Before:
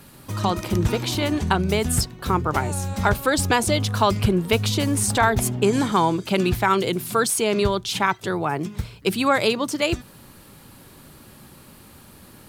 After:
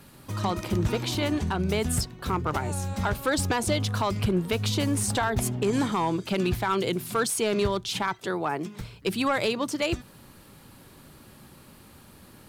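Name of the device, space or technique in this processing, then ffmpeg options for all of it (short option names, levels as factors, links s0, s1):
limiter into clipper: -filter_complex "[0:a]asettb=1/sr,asplit=3[s0][s1][s2];[s0]atrim=end=8.194[s3];[s1]atrim=start=8.19:end=8.81,asetpts=PTS-STARTPTS,afade=t=in:d=0.004:c=qsin,afade=t=out:st=0.616:d=0.004:c=qsin,highpass=190[s4];[s2]atrim=start=8.806[s5];[s3][s4]acrossfade=d=0.004:c1=hsin:c2=qsin[s6];[s6][s5]acrossfade=d=0.004:c1=qsin:c2=hsin,alimiter=limit=0.316:level=0:latency=1:release=108,asoftclip=type=hard:threshold=0.2,highshelf=f=8000:g=-3.5,volume=0.668"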